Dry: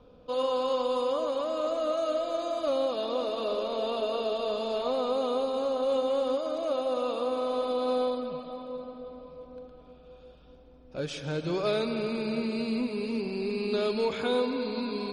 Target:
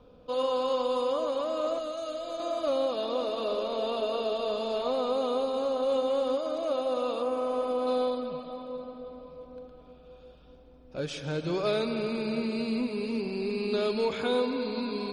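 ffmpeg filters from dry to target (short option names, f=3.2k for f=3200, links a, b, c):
-filter_complex "[0:a]asettb=1/sr,asplit=3[a][b][c];[a]atrim=end=1.784[d];[b]atrim=start=1.78:end=2.4,asetpts=PTS-STARTPTS,afade=t=in:d=0.004:c=qsin,afade=t=out:st=0.616:d=0.004:c=qsin,acrossover=split=170|3000[e][f][g];[f]acompressor=threshold=-33dB:ratio=6[h];[e][h][g]amix=inputs=3:normalize=0[i];[c]atrim=start=2.396[j];[d][i]acrossfade=d=0.004:c1=hsin:c2=qsin[k];[k][j]acrossfade=d=0.004:c1=qsin:c2=hsin,asettb=1/sr,asplit=3[l][m][n];[l]atrim=end=7.224[o];[m]atrim=start=7.22:end=7.87,asetpts=PTS-STARTPTS,afade=t=in:d=0.004:c=qsin,afade=t=out:st=0.646:d=0.004:c=qsin,equalizer=f=3.9k:t=o:w=0.42:g=-11.5[p];[n]atrim=start=7.866[q];[o][p]acrossfade=d=0.004:c1=hsin:c2=qsin[r];[r][q]acrossfade=d=0.004:c1=qsin:c2=hsin"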